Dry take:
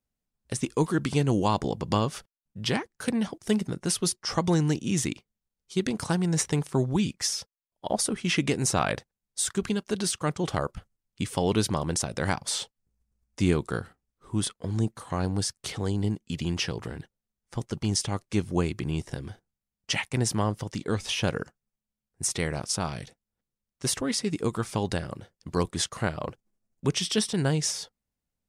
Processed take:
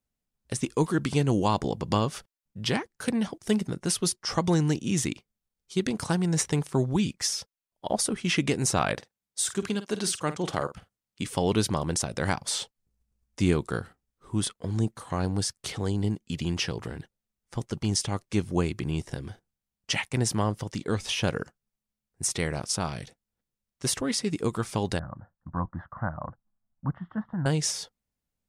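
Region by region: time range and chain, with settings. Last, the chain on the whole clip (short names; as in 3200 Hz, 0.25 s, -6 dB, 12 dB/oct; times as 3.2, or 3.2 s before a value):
8.94–11.27 HPF 170 Hz 6 dB/oct + doubler 50 ms -12.5 dB
24.99–27.46 steep low-pass 1800 Hz + fixed phaser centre 1000 Hz, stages 4
whole clip: dry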